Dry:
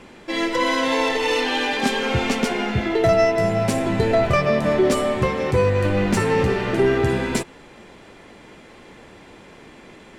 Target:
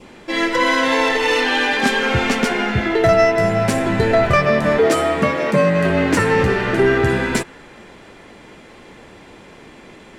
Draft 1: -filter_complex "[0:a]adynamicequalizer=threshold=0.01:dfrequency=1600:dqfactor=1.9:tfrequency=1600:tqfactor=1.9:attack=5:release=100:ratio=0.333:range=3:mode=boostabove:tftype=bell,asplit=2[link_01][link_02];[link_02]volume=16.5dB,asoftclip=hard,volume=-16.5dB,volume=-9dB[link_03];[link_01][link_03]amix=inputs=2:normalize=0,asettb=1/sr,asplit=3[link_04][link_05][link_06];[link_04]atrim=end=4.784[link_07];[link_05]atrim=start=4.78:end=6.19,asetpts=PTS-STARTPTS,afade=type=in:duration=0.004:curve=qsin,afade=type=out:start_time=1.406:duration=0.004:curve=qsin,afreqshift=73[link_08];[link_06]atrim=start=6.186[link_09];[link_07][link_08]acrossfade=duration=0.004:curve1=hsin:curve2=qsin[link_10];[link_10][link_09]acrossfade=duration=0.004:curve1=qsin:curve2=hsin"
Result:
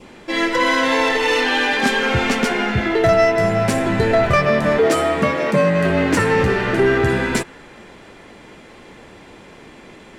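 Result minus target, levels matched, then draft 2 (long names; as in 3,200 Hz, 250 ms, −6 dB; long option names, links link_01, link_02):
gain into a clipping stage and back: distortion +16 dB
-filter_complex "[0:a]adynamicequalizer=threshold=0.01:dfrequency=1600:dqfactor=1.9:tfrequency=1600:tqfactor=1.9:attack=5:release=100:ratio=0.333:range=3:mode=boostabove:tftype=bell,asplit=2[link_01][link_02];[link_02]volume=10dB,asoftclip=hard,volume=-10dB,volume=-9dB[link_03];[link_01][link_03]amix=inputs=2:normalize=0,asettb=1/sr,asplit=3[link_04][link_05][link_06];[link_04]atrim=end=4.784[link_07];[link_05]atrim=start=4.78:end=6.19,asetpts=PTS-STARTPTS,afade=type=in:duration=0.004:curve=qsin,afade=type=out:start_time=1.406:duration=0.004:curve=qsin,afreqshift=73[link_08];[link_06]atrim=start=6.186[link_09];[link_07][link_08]acrossfade=duration=0.004:curve1=hsin:curve2=qsin[link_10];[link_10][link_09]acrossfade=duration=0.004:curve1=qsin:curve2=hsin"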